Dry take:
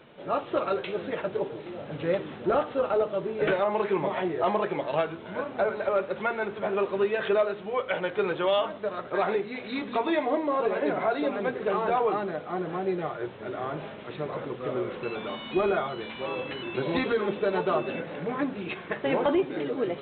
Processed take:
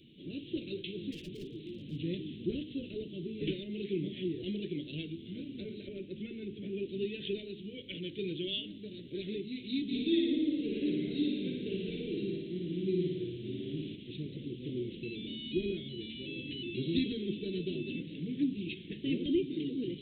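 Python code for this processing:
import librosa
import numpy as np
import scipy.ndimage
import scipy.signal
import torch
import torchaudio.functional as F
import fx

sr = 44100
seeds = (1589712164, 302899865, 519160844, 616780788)

y = fx.clip_hard(x, sr, threshold_db=-31.0, at=(1.12, 1.97))
y = fx.bessel_lowpass(y, sr, hz=2700.0, order=2, at=(5.88, 6.89))
y = fx.room_flutter(y, sr, wall_m=9.7, rt60_s=1.2, at=(9.88, 13.95), fade=0.02)
y = scipy.signal.sosfilt(scipy.signal.ellip(3, 1.0, 60, [320.0, 3000.0], 'bandstop', fs=sr, output='sos'), y)
y = fx.dynamic_eq(y, sr, hz=860.0, q=0.79, threshold_db=-48.0, ratio=4.0, max_db=-3)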